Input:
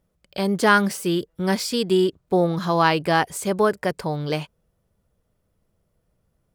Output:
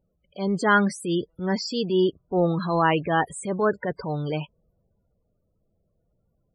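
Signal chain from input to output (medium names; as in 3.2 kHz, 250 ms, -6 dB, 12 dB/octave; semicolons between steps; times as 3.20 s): transient shaper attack -7 dB, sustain +2 dB; loudest bins only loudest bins 32; trim -1 dB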